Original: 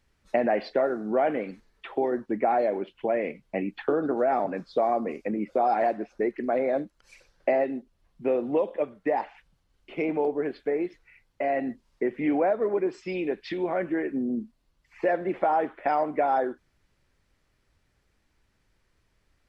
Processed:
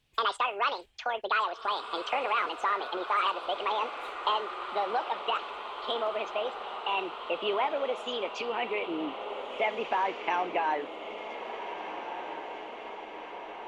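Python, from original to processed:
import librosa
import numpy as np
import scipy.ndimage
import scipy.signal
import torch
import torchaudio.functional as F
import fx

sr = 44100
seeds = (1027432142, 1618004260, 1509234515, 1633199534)

y = fx.speed_glide(x, sr, from_pct=190, to_pct=95)
y = fx.peak_eq(y, sr, hz=2700.0, db=10.5, octaves=1.1)
y = fx.echo_diffused(y, sr, ms=1693, feedback_pct=66, wet_db=-9.0)
y = y * librosa.db_to_amplitude(-6.0)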